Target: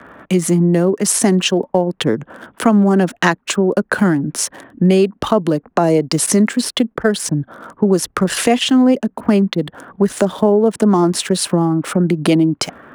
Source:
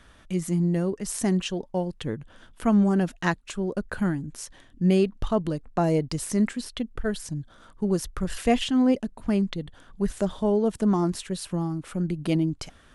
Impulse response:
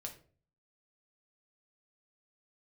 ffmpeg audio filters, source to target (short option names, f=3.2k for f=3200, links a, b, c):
-filter_complex "[0:a]asettb=1/sr,asplit=3[a][b][c];[a]atrim=end=6.264[d];[b]atrim=start=6.26:end=7.36,asetpts=PTS-STARTPTS,afade=t=in:d=0.004:c=qsin,afade=t=out:st=1.096:d=0.004:c=qsin,agate=range=-13dB:threshold=-38dB:ratio=16:detection=peak[e];[c]atrim=start=7.356[f];[d][e]acrossfade=d=0.004:c1=hsin:c2=qsin[g];[g][f]acrossfade=d=0.004:c1=qsin:c2=hsin,acrossover=split=340|390|1900[h][i][j][k];[k]aeval=exprs='sgn(val(0))*max(abs(val(0))-0.00168,0)':c=same[l];[h][i][j][l]amix=inputs=4:normalize=0,highpass=210,acompressor=threshold=-32dB:ratio=3,alimiter=level_in=21dB:limit=-1dB:release=50:level=0:latency=1,volume=-1dB"